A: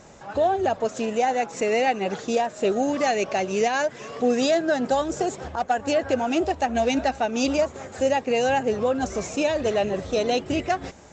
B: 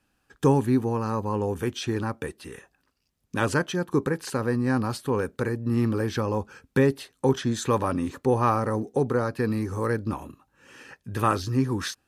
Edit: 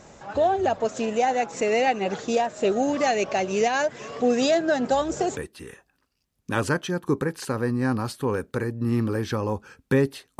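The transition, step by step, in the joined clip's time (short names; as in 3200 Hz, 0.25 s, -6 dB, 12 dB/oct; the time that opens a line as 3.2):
A
5.37 switch to B from 2.22 s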